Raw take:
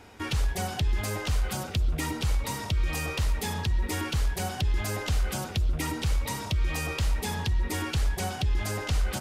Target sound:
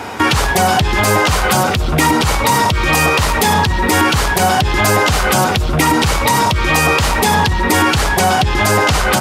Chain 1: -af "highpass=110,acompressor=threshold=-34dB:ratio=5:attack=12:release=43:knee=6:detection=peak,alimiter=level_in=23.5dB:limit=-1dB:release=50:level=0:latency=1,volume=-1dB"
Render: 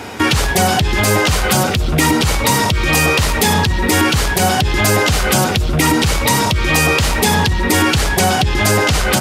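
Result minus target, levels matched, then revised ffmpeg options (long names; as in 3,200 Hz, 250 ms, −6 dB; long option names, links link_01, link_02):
1,000 Hz band −3.5 dB
-af "highpass=110,equalizer=frequency=1000:width=1:gain=6.5,acompressor=threshold=-34dB:ratio=5:attack=12:release=43:knee=6:detection=peak,alimiter=level_in=23.5dB:limit=-1dB:release=50:level=0:latency=1,volume=-1dB"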